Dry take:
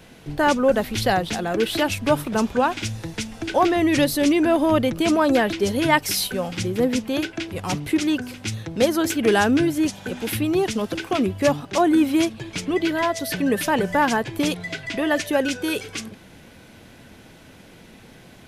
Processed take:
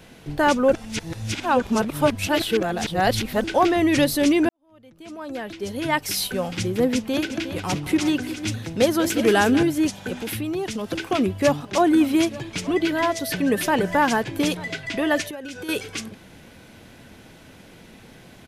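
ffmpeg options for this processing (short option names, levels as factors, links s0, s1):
-filter_complex "[0:a]asettb=1/sr,asplit=3[s0][s1][s2];[s0]atrim=end=6.944[s3];[s1]atrim=start=6.94:end=9.63,asetpts=PTS-STARTPTS,afade=t=in:d=0.004:c=qsin,afade=t=out:st=2.686:d=0.004:c=qsin,aecho=1:1:192|358:0.188|0.299,atrim=end_sample=118629[s4];[s2]atrim=start=9.626[s5];[s3][s4]acrossfade=d=0.004:c1=hsin:c2=qsin[s6];[s6][s5]acrossfade=d=0.004:c1=qsin:c2=hsin,asettb=1/sr,asplit=3[s7][s8][s9];[s7]atrim=end=10.184[s10];[s8]atrim=start=10.18:end=10.92,asetpts=PTS-STARTPTS,afade=t=in:d=0.004:c=qsin,afade=t=out:st=0.736:d=0.004:c=qsin,acompressor=threshold=0.0501:ratio=2.5:attack=3.2:release=140:knee=1:detection=peak[s11];[s9]atrim=start=10.916[s12];[s10][s11]acrossfade=d=0.004:c1=hsin:c2=qsin[s13];[s13][s12]acrossfade=d=0.004:c1=qsin:c2=hsin,asplit=3[s14][s15][s16];[s14]afade=t=out:st=11.6:d=0.02[s17];[s15]aecho=1:1:889:0.119,afade=t=in:st=11.6:d=0.02,afade=t=out:st=14.69:d=0.02[s18];[s16]afade=t=in:st=14.69:d=0.02[s19];[s17][s18][s19]amix=inputs=3:normalize=0,asettb=1/sr,asplit=3[s20][s21][s22];[s20]atrim=end=15.274[s23];[s21]atrim=start=15.27:end=15.69,asetpts=PTS-STARTPTS,afade=t=in:d=0.004:c=qsin,afade=t=out:st=0.416:d=0.004:c=qsin,acompressor=threshold=0.0316:ratio=16:attack=3.2:release=140:knee=1:detection=peak[s24];[s22]atrim=start=15.686[s25];[s23][s24]acrossfade=d=0.004:c1=hsin:c2=qsin[s26];[s26][s25]acrossfade=d=0.004:c1=qsin:c2=hsin,asplit=4[s27][s28][s29][s30];[s27]atrim=end=0.732[s31];[s28]atrim=start=0.728:end=3.442,asetpts=PTS-STARTPTS,areverse[s32];[s29]atrim=start=3.438:end=4.49,asetpts=PTS-STARTPTS,afade=t=out:st=1.048:d=0.004:c=hsin[s33];[s30]atrim=start=4.49,asetpts=PTS-STARTPTS,afade=t=in:d=1.88:c=qua[s34];[s31][s32]acrossfade=d=0.004:c1=hsin:c2=hsin[s35];[s33][s34]concat=n=2:v=0:a=1[s36];[s35][s36]acrossfade=d=0.004:c1=hsin:c2=hsin"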